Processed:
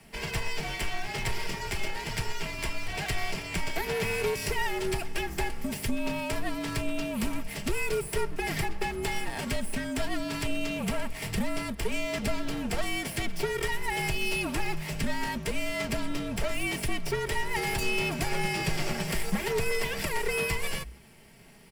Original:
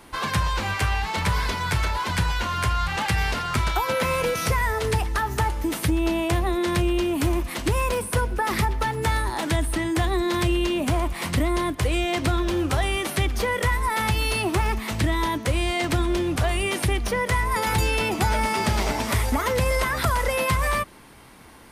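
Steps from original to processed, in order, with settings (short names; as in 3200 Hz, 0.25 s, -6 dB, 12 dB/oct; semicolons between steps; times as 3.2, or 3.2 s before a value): minimum comb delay 0.38 ms; comb 4.2 ms, depth 46%; frequency shift -62 Hz; gain -5.5 dB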